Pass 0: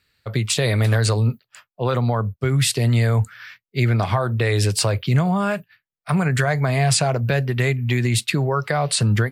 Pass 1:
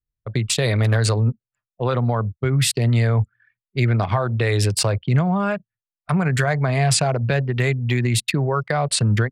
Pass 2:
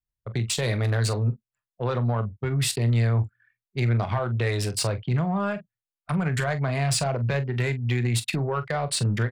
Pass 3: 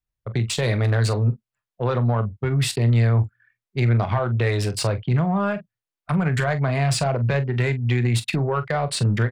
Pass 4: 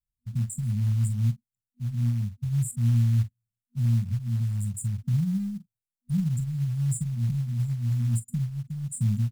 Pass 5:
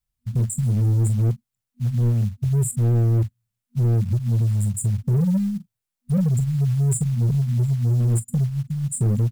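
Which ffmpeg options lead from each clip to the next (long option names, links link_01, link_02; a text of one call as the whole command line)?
ffmpeg -i in.wav -af "anlmdn=251" out.wav
ffmpeg -i in.wav -filter_complex "[0:a]asoftclip=type=tanh:threshold=-12.5dB,asplit=2[link_01][link_02];[link_02]aecho=0:1:25|43:0.168|0.224[link_03];[link_01][link_03]amix=inputs=2:normalize=0,volume=-4.5dB" out.wav
ffmpeg -i in.wav -af "highshelf=frequency=5000:gain=-7.5,volume=4dB" out.wav
ffmpeg -i in.wav -af "afftfilt=real='re*(1-between(b*sr/4096,240,7000))':imag='im*(1-between(b*sr/4096,240,7000))':win_size=4096:overlap=0.75,acrusher=bits=7:mode=log:mix=0:aa=0.000001,volume=-4dB" out.wav
ffmpeg -i in.wav -af "volume=23.5dB,asoftclip=hard,volume=-23.5dB,volume=7.5dB" out.wav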